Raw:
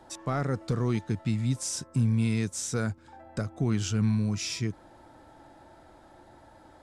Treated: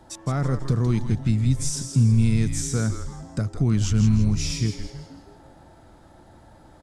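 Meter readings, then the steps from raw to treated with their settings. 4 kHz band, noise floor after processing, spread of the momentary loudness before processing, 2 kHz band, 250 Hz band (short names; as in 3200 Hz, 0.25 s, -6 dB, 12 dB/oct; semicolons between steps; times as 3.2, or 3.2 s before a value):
+3.5 dB, -51 dBFS, 9 LU, +1.0 dB, +5.0 dB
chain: tone controls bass +8 dB, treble +4 dB; on a send: frequency-shifting echo 0.163 s, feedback 42%, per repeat -130 Hz, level -7.5 dB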